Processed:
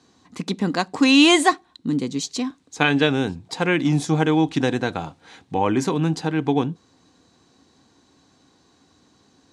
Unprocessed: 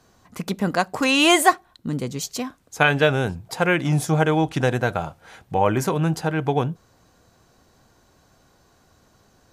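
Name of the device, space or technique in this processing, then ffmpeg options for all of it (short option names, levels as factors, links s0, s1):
car door speaker: -af "highpass=98,equalizer=f=120:t=q:w=4:g=-5,equalizer=f=280:t=q:w=4:g=9,equalizer=f=610:t=q:w=4:g=-8,equalizer=f=1400:t=q:w=4:g=-5,equalizer=f=3900:t=q:w=4:g=6,lowpass=f=8700:w=0.5412,lowpass=f=8700:w=1.3066"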